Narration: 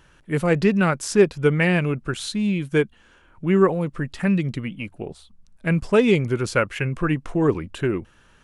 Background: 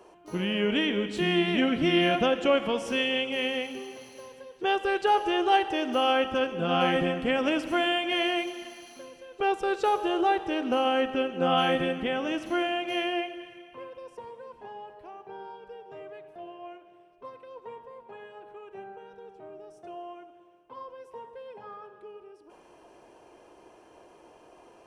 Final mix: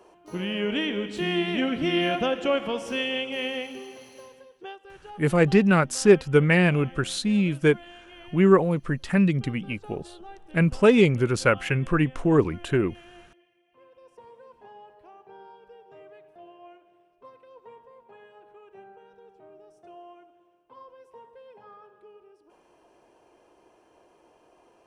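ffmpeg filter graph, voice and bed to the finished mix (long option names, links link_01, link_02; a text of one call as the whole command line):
ffmpeg -i stem1.wav -i stem2.wav -filter_complex "[0:a]adelay=4900,volume=0dB[link_01];[1:a]volume=14.5dB,afade=type=out:start_time=4.21:duration=0.56:silence=0.1,afade=type=in:start_time=13.64:duration=0.71:silence=0.16788[link_02];[link_01][link_02]amix=inputs=2:normalize=0" out.wav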